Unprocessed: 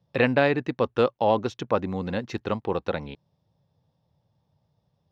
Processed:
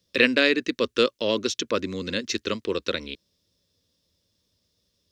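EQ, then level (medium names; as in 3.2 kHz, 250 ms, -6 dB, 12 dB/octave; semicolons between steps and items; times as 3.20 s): treble shelf 2.4 kHz +10 dB; peaking EQ 6 kHz +7 dB 1.6 oct; static phaser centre 330 Hz, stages 4; +2.0 dB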